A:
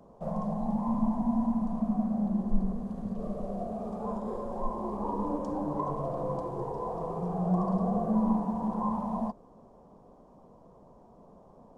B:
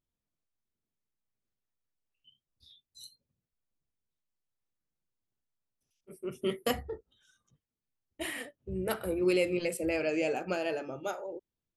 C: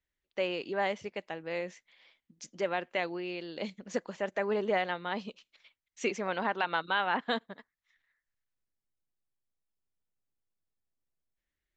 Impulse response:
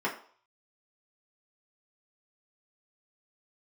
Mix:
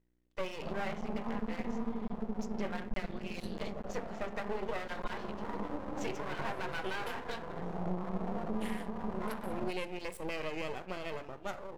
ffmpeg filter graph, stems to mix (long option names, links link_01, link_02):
-filter_complex "[0:a]lowpass=1400,adelay=400,volume=-2.5dB[link_01];[1:a]bass=frequency=250:gain=-7,treble=frequency=4000:gain=-4,adelay=400,volume=-1.5dB,asplit=2[link_02][link_03];[link_03]volume=-21dB[link_04];[2:a]aeval=exprs='val(0)+0.000447*(sin(2*PI*60*n/s)+sin(2*PI*2*60*n/s)/2+sin(2*PI*3*60*n/s)/3+sin(2*PI*4*60*n/s)/4+sin(2*PI*5*60*n/s)/5)':channel_layout=same,volume=-3.5dB,asplit=2[link_05][link_06];[link_06]volume=-8.5dB[link_07];[3:a]atrim=start_sample=2205[link_08];[link_04][link_07]amix=inputs=2:normalize=0[link_09];[link_09][link_08]afir=irnorm=-1:irlink=0[link_10];[link_01][link_02][link_05][link_10]amix=inputs=4:normalize=0,aeval=exprs='max(val(0),0)':channel_layout=same,alimiter=limit=-24dB:level=0:latency=1:release=332"